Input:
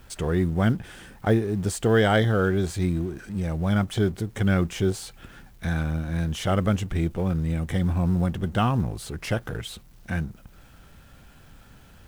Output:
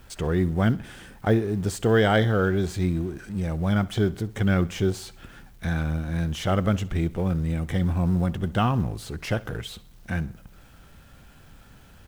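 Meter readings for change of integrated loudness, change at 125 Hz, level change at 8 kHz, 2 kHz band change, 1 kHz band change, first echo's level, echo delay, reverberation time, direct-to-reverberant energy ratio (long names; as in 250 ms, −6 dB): 0.0 dB, 0.0 dB, −2.5 dB, 0.0 dB, 0.0 dB, −21.0 dB, 65 ms, no reverb audible, no reverb audible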